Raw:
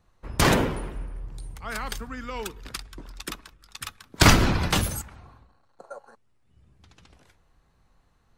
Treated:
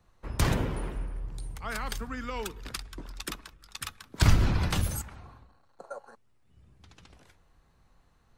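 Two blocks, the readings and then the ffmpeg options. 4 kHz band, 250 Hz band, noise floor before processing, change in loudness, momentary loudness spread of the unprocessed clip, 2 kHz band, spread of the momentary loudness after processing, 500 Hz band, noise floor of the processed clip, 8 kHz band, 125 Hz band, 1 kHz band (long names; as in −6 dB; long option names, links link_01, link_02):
−9.0 dB, −7.5 dB, −65 dBFS, −7.0 dB, 21 LU, −9.0 dB, 19 LU, −8.5 dB, −65 dBFS, −8.0 dB, −2.0 dB, −9.0 dB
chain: -filter_complex "[0:a]acrossover=split=140[link_01][link_02];[link_02]acompressor=threshold=-32dB:ratio=3[link_03];[link_01][link_03]amix=inputs=2:normalize=0"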